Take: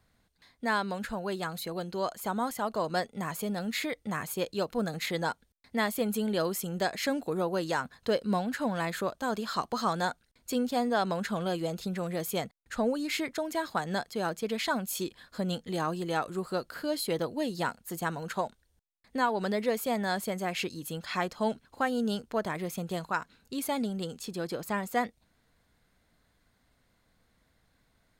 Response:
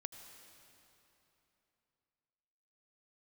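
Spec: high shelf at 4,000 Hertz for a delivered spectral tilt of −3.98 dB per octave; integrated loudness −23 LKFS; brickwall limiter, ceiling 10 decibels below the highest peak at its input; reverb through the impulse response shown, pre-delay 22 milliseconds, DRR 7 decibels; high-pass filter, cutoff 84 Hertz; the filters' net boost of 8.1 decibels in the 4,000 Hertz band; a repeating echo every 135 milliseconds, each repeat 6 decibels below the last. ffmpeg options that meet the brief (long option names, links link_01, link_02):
-filter_complex "[0:a]highpass=84,highshelf=frequency=4000:gain=4.5,equalizer=frequency=4000:width_type=o:gain=7,alimiter=limit=-21.5dB:level=0:latency=1,aecho=1:1:135|270|405|540|675|810:0.501|0.251|0.125|0.0626|0.0313|0.0157,asplit=2[link_01][link_02];[1:a]atrim=start_sample=2205,adelay=22[link_03];[link_02][link_03]afir=irnorm=-1:irlink=0,volume=-3.5dB[link_04];[link_01][link_04]amix=inputs=2:normalize=0,volume=8dB"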